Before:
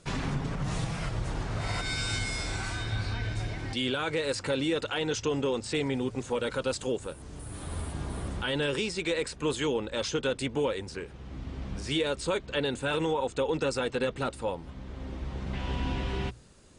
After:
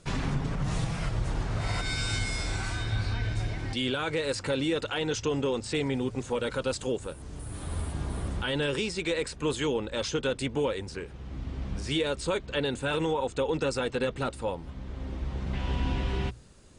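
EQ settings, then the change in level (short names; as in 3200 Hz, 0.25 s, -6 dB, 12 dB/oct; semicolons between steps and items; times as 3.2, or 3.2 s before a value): low shelf 110 Hz +4.5 dB; 0.0 dB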